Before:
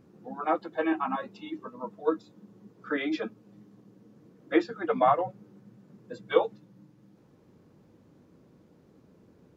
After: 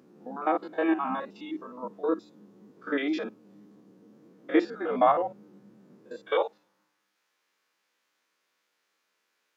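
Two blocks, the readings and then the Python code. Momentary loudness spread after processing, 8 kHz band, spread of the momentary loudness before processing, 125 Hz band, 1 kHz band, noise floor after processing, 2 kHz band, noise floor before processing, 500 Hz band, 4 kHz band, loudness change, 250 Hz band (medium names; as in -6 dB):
16 LU, no reading, 15 LU, -5.5 dB, +0.5 dB, -77 dBFS, 0.0 dB, -60 dBFS, 0.0 dB, +0.5 dB, +0.5 dB, +2.0 dB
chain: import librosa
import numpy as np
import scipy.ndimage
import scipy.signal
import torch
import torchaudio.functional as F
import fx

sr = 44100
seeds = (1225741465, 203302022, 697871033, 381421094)

y = fx.spec_steps(x, sr, hold_ms=50)
y = fx.wow_flutter(y, sr, seeds[0], rate_hz=2.1, depth_cents=17.0)
y = fx.filter_sweep_highpass(y, sr, from_hz=240.0, to_hz=1900.0, start_s=5.91, end_s=7.17, q=1.0)
y = y * librosa.db_to_amplitude(2.0)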